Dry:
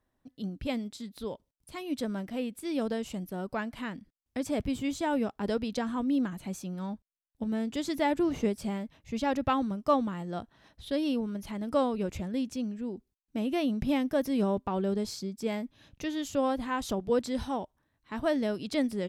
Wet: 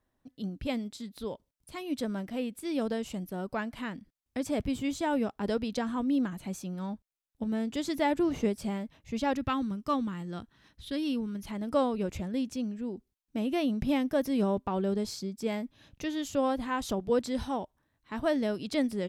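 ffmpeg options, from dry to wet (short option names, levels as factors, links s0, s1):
-filter_complex "[0:a]asettb=1/sr,asplit=3[s0][s1][s2];[s0]atrim=end=9.334[s3];[s1]atrim=start=9.33:end=11.46,asetpts=PTS-STARTPTS,afade=t=in:d=0.004:c=qsin,afade=t=out:st=2.126:d=0.004:c=qsin,equalizer=f=660:w=1.5:g=-10.5[s4];[s2]atrim=start=11.456[s5];[s3][s4]acrossfade=d=0.004:c1=hsin:c2=qsin[s6];[s6][s5]acrossfade=d=0.004:c1=qsin:c2=hsin"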